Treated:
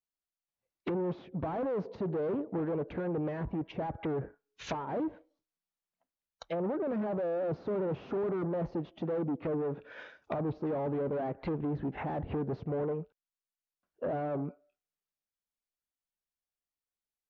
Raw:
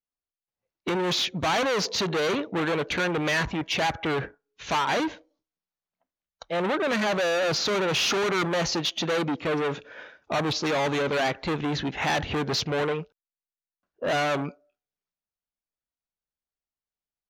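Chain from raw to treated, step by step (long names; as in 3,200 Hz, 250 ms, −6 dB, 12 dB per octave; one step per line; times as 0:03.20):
treble cut that deepens with the level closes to 590 Hz, closed at −25 dBFS
highs frequency-modulated by the lows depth 0.14 ms
level −4.5 dB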